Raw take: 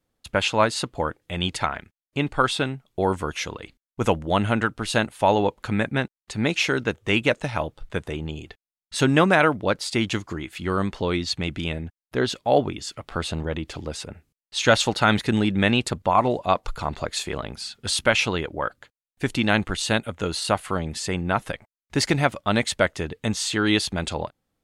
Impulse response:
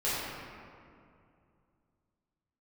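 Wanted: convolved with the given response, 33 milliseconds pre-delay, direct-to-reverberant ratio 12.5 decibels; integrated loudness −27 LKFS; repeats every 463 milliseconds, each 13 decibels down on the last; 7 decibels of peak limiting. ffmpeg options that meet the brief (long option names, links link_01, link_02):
-filter_complex "[0:a]alimiter=limit=-11dB:level=0:latency=1,aecho=1:1:463|926|1389:0.224|0.0493|0.0108,asplit=2[link_01][link_02];[1:a]atrim=start_sample=2205,adelay=33[link_03];[link_02][link_03]afir=irnorm=-1:irlink=0,volume=-22.5dB[link_04];[link_01][link_04]amix=inputs=2:normalize=0,volume=-1.5dB"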